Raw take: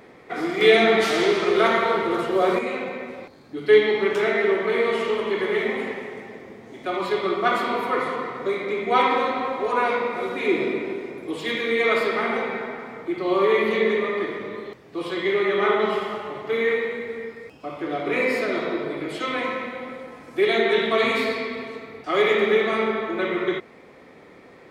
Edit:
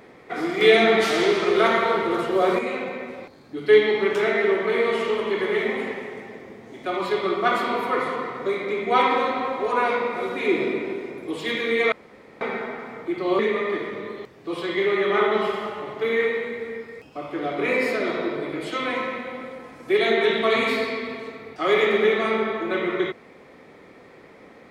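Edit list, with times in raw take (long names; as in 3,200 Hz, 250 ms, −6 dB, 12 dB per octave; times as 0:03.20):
0:11.92–0:12.41: fill with room tone
0:13.39–0:13.87: remove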